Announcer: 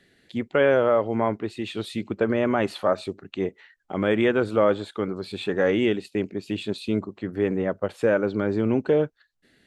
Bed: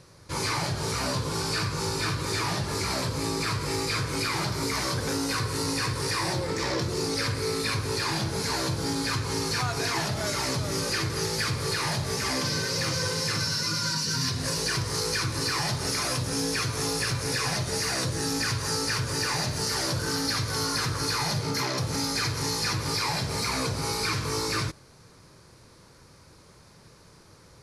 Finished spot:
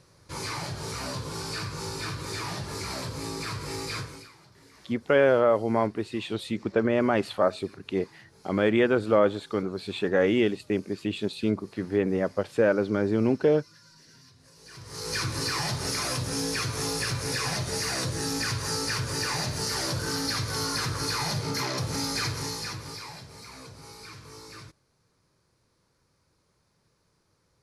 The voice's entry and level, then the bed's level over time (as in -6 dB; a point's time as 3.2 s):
4.55 s, -1.0 dB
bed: 4 s -5.5 dB
4.37 s -27.5 dB
14.53 s -27.5 dB
15.17 s -1.5 dB
22.28 s -1.5 dB
23.31 s -17 dB